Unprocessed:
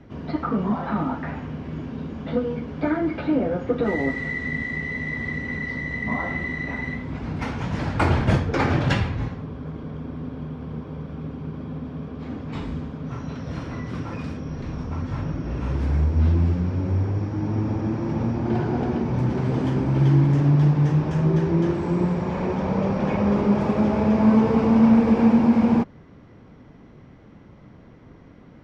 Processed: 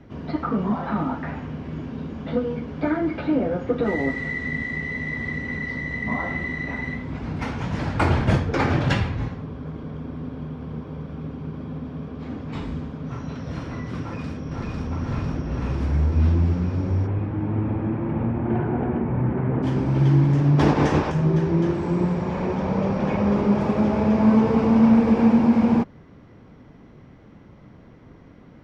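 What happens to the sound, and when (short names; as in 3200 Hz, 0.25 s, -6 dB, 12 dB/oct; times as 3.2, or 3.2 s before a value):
14.01–14.91 echo throw 0.5 s, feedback 75%, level -1.5 dB
17.06–19.62 LPF 3300 Hz -> 2100 Hz 24 dB/oct
20.58–21.1 spectral limiter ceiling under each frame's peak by 20 dB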